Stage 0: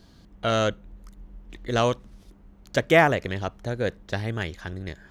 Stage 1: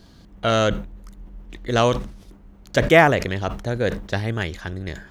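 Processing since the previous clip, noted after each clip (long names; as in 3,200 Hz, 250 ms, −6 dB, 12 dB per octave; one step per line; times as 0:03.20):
level that may fall only so fast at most 100 dB per second
level +4 dB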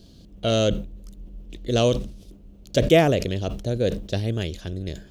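flat-topped bell 1,300 Hz −13 dB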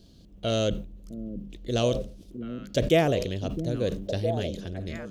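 echo through a band-pass that steps 659 ms, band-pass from 220 Hz, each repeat 1.4 octaves, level −3.5 dB
level −5 dB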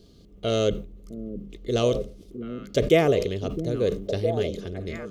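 hollow resonant body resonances 420/1,200/2,100 Hz, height 11 dB, ringing for 45 ms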